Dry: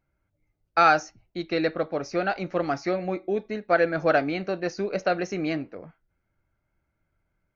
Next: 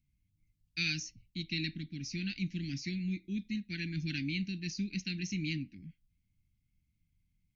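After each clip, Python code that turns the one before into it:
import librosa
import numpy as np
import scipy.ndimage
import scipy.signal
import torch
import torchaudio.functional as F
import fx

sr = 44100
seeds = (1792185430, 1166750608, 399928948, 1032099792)

y = scipy.signal.sosfilt(scipy.signal.cheby2(4, 50, [460.0, 1300.0], 'bandstop', fs=sr, output='sos'), x)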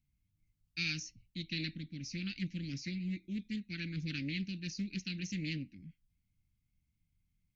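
y = fx.doppler_dist(x, sr, depth_ms=0.2)
y = y * librosa.db_to_amplitude(-2.5)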